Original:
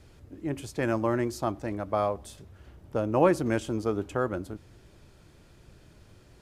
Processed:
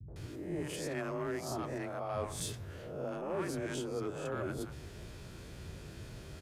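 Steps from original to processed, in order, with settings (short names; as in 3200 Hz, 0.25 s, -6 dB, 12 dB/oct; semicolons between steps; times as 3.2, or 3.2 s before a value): spectral swells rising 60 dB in 0.55 s; reverse; compressor 6:1, threshold -38 dBFS, peak gain reduction 21.5 dB; reverse; frequency shift +25 Hz; added harmonics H 5 -23 dB, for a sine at -27.5 dBFS; three bands offset in time lows, mids, highs 80/160 ms, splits 210/830 Hz; gain +3.5 dB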